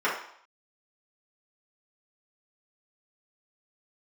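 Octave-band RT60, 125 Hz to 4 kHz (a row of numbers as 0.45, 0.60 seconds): 0.30, 0.55, 0.60, 0.70, 0.60, 0.60 seconds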